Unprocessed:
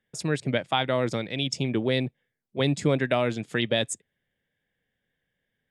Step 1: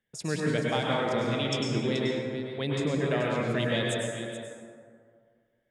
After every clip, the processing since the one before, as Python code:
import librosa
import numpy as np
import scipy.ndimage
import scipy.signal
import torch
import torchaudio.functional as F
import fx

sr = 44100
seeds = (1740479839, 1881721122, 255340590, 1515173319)

y = fx.rider(x, sr, range_db=10, speed_s=0.5)
y = y + 10.0 ** (-11.0 / 20.0) * np.pad(y, (int(430 * sr / 1000.0), 0))[:len(y)]
y = fx.rev_plate(y, sr, seeds[0], rt60_s=2.0, hf_ratio=0.4, predelay_ms=90, drr_db=-3.5)
y = y * 10.0 ** (-6.5 / 20.0)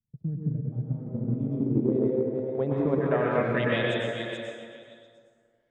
y = fx.filter_sweep_lowpass(x, sr, from_hz=130.0, to_hz=4700.0, start_s=0.88, end_s=4.46, q=1.5)
y = fx.echo_stepped(y, sr, ms=116, hz=400.0, octaves=0.7, feedback_pct=70, wet_db=-2.5)
y = fx.transient(y, sr, attack_db=6, sustain_db=0)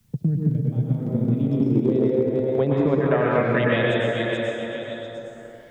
y = fx.band_squash(x, sr, depth_pct=70)
y = y * 10.0 ** (5.5 / 20.0)